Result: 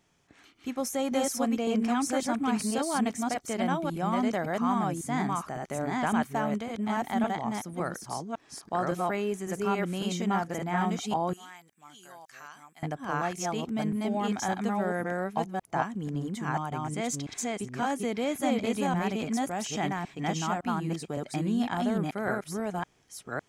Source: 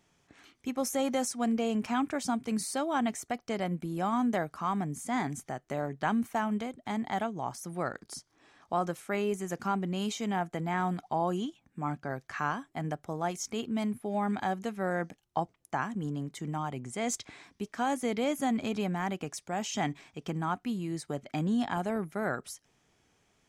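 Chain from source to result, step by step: chunks repeated in reverse 557 ms, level -0.5 dB; 11.33–12.83 s: pre-emphasis filter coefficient 0.97

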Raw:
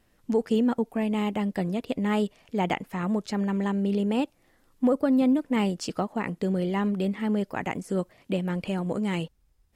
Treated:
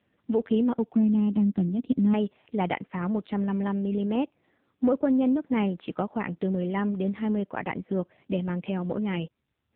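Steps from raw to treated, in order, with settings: 0.95–2.14 s: graphic EQ 250/500/1000/2000 Hz +10/-9/-6/-12 dB; AMR-NB 6.7 kbps 8 kHz

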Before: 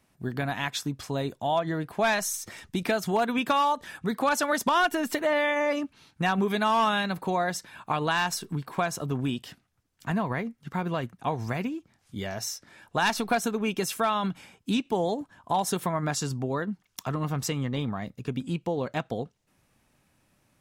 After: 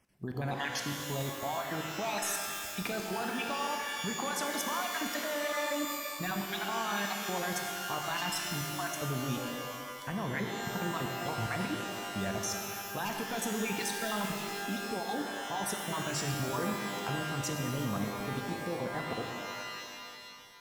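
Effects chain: random holes in the spectrogram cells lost 29%; level held to a coarse grid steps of 18 dB; pitch-shifted reverb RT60 2.3 s, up +12 st, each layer -2 dB, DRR 3 dB

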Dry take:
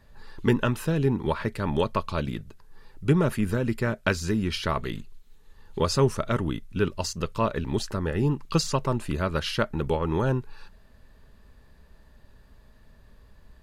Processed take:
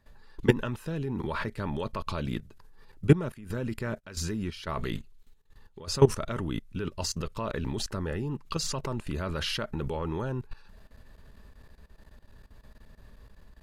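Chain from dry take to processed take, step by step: level held to a coarse grid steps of 18 dB; 3.28–5.87 s: trance gate "xx.x..xxx.xx.xx" 90 bpm -12 dB; trim +4.5 dB

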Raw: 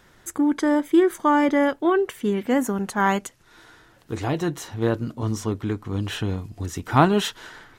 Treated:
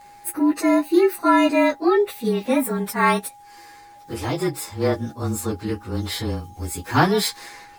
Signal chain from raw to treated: frequency axis rescaled in octaves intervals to 109%; whistle 820 Hz -48 dBFS; tone controls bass -4 dB, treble +7 dB; trim +4 dB

